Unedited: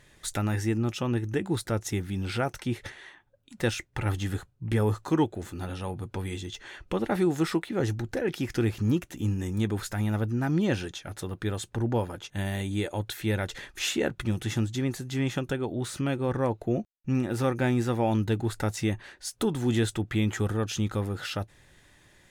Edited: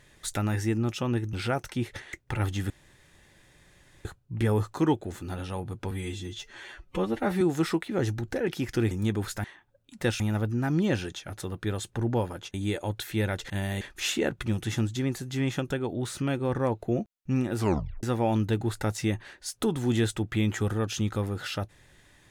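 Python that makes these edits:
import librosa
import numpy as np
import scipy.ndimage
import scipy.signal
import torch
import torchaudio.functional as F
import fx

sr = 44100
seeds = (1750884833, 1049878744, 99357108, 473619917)

y = fx.edit(x, sr, fx.cut(start_s=1.33, length_s=0.9),
    fx.move(start_s=3.03, length_s=0.76, to_s=9.99),
    fx.insert_room_tone(at_s=4.36, length_s=1.35),
    fx.stretch_span(start_s=6.22, length_s=1.0, factor=1.5),
    fx.cut(start_s=8.72, length_s=0.74),
    fx.move(start_s=12.33, length_s=0.31, to_s=13.6),
    fx.tape_stop(start_s=17.36, length_s=0.46), tone=tone)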